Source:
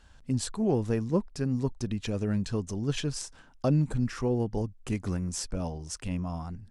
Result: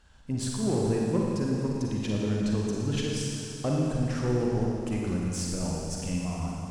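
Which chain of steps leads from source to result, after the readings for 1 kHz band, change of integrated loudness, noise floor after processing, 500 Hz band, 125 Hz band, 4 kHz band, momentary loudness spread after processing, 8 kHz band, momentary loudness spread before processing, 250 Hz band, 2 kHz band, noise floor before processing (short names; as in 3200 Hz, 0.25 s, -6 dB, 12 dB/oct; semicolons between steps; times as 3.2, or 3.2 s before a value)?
+2.0 dB, +1.5 dB, -39 dBFS, +2.0 dB, +1.0 dB, +2.5 dB, 6 LU, +2.5 dB, 8 LU, +2.0 dB, +2.5 dB, -56 dBFS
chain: added harmonics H 5 -31 dB, 8 -32 dB, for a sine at -13.5 dBFS; Schroeder reverb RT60 2.7 s, DRR -3 dB; gain -3.5 dB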